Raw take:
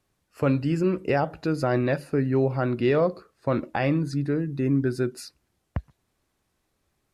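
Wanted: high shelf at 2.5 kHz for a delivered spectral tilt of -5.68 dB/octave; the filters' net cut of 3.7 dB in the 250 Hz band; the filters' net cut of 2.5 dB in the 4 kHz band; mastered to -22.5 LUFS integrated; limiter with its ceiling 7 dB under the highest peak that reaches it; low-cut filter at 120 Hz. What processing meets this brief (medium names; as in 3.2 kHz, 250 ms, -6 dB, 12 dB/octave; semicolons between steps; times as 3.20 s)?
high-pass 120 Hz; peaking EQ 250 Hz -4.5 dB; treble shelf 2.5 kHz +3.5 dB; peaking EQ 4 kHz -7 dB; trim +7 dB; peak limiter -10.5 dBFS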